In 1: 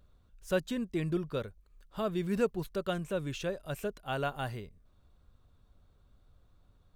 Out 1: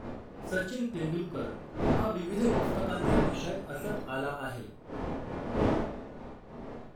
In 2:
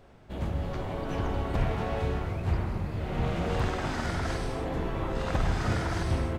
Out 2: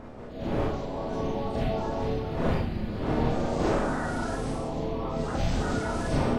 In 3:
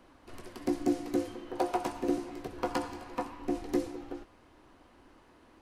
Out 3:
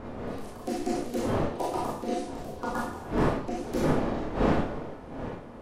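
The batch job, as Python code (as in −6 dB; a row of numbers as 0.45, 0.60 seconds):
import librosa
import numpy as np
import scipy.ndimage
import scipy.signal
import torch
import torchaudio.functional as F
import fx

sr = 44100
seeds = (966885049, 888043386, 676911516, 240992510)

y = fx.spec_quant(x, sr, step_db=30)
y = fx.dmg_wind(y, sr, seeds[0], corner_hz=530.0, level_db=-34.0)
y = fx.rev_schroeder(y, sr, rt60_s=0.4, comb_ms=26, drr_db=-3.5)
y = y * 10.0 ** (-12 / 20.0) / np.max(np.abs(y))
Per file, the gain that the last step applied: −5.0, −4.0, −2.5 decibels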